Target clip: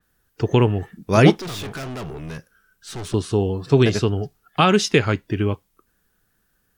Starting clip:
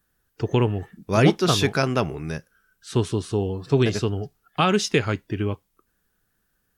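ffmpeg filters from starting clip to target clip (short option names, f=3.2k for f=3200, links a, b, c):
-filter_complex "[0:a]asettb=1/sr,asplit=3[a][b][c];[a]atrim=end=1.394[d];[b]atrim=start=1.39:end=3.14,asetpts=PTS-STARTPTS,afade=t=in:d=0.004:c=qsin,afade=t=out:st=1.746:d=0.004:c=qsin,aeval=exprs='(tanh(44.7*val(0)+0.25)-tanh(0.25))/44.7':c=same[e];[c]atrim=start=3.136[f];[d][e]acrossfade=d=0.004:c1=hsin:c2=qsin[g];[g][f]acrossfade=d=0.004:c1=qsin:c2=hsin,adynamicequalizer=threshold=0.00891:dfrequency=5200:dqfactor=0.7:tfrequency=5200:tqfactor=0.7:attack=5:release=100:ratio=0.375:range=2.5:mode=cutabove:tftype=highshelf,volume=4dB"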